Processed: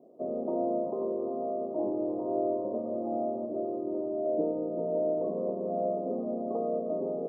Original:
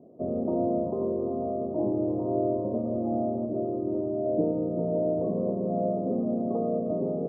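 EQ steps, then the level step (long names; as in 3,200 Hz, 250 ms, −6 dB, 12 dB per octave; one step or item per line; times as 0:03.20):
Bessel high-pass filter 400 Hz, order 2
0.0 dB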